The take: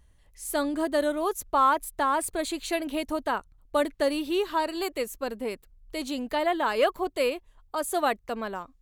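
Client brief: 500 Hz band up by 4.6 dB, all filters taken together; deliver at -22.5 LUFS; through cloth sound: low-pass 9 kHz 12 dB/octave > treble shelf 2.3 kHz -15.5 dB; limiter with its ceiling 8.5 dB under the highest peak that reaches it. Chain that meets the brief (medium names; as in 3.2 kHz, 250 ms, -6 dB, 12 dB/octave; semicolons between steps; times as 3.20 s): peaking EQ 500 Hz +7 dB; peak limiter -15 dBFS; low-pass 9 kHz 12 dB/octave; treble shelf 2.3 kHz -15.5 dB; trim +5.5 dB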